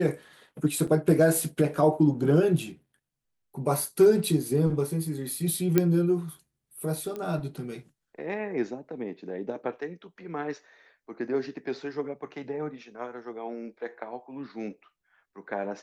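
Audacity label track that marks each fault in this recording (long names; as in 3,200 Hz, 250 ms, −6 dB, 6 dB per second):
0.870000	0.880000	drop-out 5 ms
5.780000	5.780000	click −8 dBFS
7.160000	7.160000	click −23 dBFS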